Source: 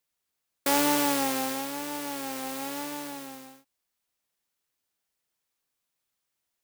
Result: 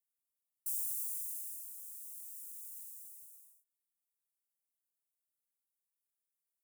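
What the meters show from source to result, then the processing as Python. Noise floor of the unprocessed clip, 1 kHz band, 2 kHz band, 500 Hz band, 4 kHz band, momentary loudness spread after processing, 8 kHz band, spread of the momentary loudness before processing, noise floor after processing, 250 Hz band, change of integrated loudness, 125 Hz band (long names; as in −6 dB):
−83 dBFS, below −40 dB, below −40 dB, below −40 dB, −32.0 dB, 16 LU, −9.5 dB, 15 LU, below −85 dBFS, below −40 dB, −11.5 dB, below −40 dB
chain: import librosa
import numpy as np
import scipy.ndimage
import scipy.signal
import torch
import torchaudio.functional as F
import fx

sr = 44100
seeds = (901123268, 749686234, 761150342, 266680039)

y = scipy.signal.sosfilt(scipy.signal.cheby2(4, 60, 2700.0, 'highpass', fs=sr, output='sos'), x)
y = F.gain(torch.from_numpy(y), -6.0).numpy()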